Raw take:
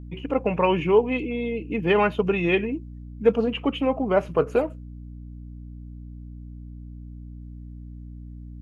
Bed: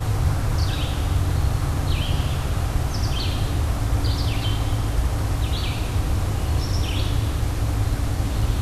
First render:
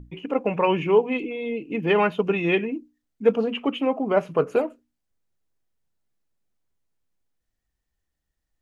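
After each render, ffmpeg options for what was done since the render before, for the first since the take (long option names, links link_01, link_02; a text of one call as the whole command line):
ffmpeg -i in.wav -af "bandreject=frequency=60:width_type=h:width=6,bandreject=frequency=120:width_type=h:width=6,bandreject=frequency=180:width_type=h:width=6,bandreject=frequency=240:width_type=h:width=6,bandreject=frequency=300:width_type=h:width=6" out.wav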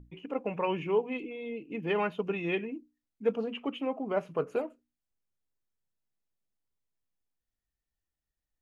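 ffmpeg -i in.wav -af "volume=-9.5dB" out.wav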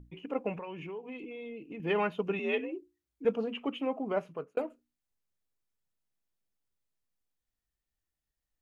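ffmpeg -i in.wav -filter_complex "[0:a]asettb=1/sr,asplit=3[link_01][link_02][link_03];[link_01]atrim=end=0.554[link_04];[link_02]atrim=start=0.55:end=1.8,asetpts=PTS-STARTPTS,afade=type=in:duration=0.004:curve=qsin,afade=type=out:start_time=1.246:duration=0.004:curve=qsin,acompressor=threshold=-39dB:ratio=5:attack=3.2:release=140:knee=1:detection=peak[link_05];[link_03]atrim=start=1.796[link_06];[link_04][link_05]acrossfade=duration=0.004:curve1=hsin:curve2=qsin[link_07];[link_07][link_06]acrossfade=duration=0.004:curve1=qsin:curve2=hsin,asettb=1/sr,asplit=3[link_08][link_09][link_10];[link_08]atrim=end=2.394[link_11];[link_09]atrim=start=2.39:end=3.25,asetpts=PTS-STARTPTS,afade=type=in:duration=0.004:curve=qsin,afade=type=out:start_time=0.856:duration=0.004:curve=qsin,afreqshift=57[link_12];[link_10]atrim=start=3.246[link_13];[link_11][link_12]acrossfade=duration=0.004:curve1=hsin:curve2=qsin[link_14];[link_14][link_13]acrossfade=duration=0.004:curve1=qsin:curve2=hsin,asplit=2[link_15][link_16];[link_15]atrim=end=4.57,asetpts=PTS-STARTPTS,afade=type=out:start_time=4.1:duration=0.47[link_17];[link_16]atrim=start=4.57,asetpts=PTS-STARTPTS,afade=type=in:duration=0.004:curve=hsin[link_18];[link_17][link_18]concat=n=2:v=0:a=1" out.wav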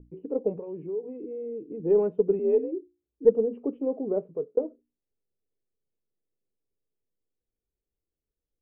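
ffmpeg -i in.wav -af "lowpass=frequency=440:width_type=q:width=3.4,aeval=exprs='0.447*(cos(1*acos(clip(val(0)/0.447,-1,1)))-cos(1*PI/2))+0.00398*(cos(4*acos(clip(val(0)/0.447,-1,1)))-cos(4*PI/2))':channel_layout=same" out.wav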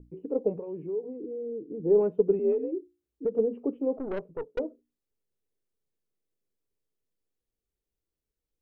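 ffmpeg -i in.wav -filter_complex "[0:a]asettb=1/sr,asplit=3[link_01][link_02][link_03];[link_01]atrim=end=1.044[link_04];[link_02]atrim=start=1.04:end=2.01,asetpts=PTS-STARTPTS,afade=type=in:duration=0.004:curve=qsin,afade=type=out:start_time=0.966:duration=0.004:curve=qsin,lowpass=1100[link_05];[link_03]atrim=start=2.006[link_06];[link_04][link_05]acrossfade=duration=0.004:curve1=hsin:curve2=qsin[link_07];[link_07][link_06]acrossfade=duration=0.004:curve1=qsin:curve2=hsin,asettb=1/sr,asplit=3[link_08][link_09][link_10];[link_08]atrim=end=2.524[link_11];[link_09]atrim=start=2.52:end=3.39,asetpts=PTS-STARTPTS,afade=type=in:duration=0.004:curve=qsin,afade=type=out:start_time=0.866:duration=0.004:curve=qsin,acompressor=threshold=-24dB:ratio=6:attack=3.2:release=140:knee=1:detection=peak[link_12];[link_10]atrim=start=3.386[link_13];[link_11][link_12]acrossfade=duration=0.004:curve1=hsin:curve2=qsin[link_14];[link_14][link_13]acrossfade=duration=0.004:curve1=qsin:curve2=hsin,asplit=3[link_15][link_16][link_17];[link_15]afade=type=out:start_time=3.96:duration=0.02[link_18];[link_16]aeval=exprs='(tanh(25.1*val(0)+0.55)-tanh(0.55))/25.1':channel_layout=same,afade=type=in:start_time=3.96:duration=0.02,afade=type=out:start_time=4.58:duration=0.02[link_19];[link_17]afade=type=in:start_time=4.58:duration=0.02[link_20];[link_18][link_19][link_20]amix=inputs=3:normalize=0" out.wav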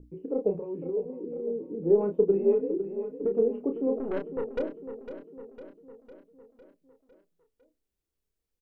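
ffmpeg -i in.wav -filter_complex "[0:a]asplit=2[link_01][link_02];[link_02]adelay=30,volume=-6dB[link_03];[link_01][link_03]amix=inputs=2:normalize=0,aecho=1:1:504|1008|1512|2016|2520|3024:0.282|0.161|0.0916|0.0522|0.0298|0.017" out.wav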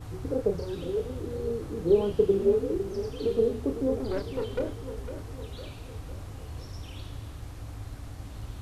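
ffmpeg -i in.wav -i bed.wav -filter_complex "[1:a]volume=-17.5dB[link_01];[0:a][link_01]amix=inputs=2:normalize=0" out.wav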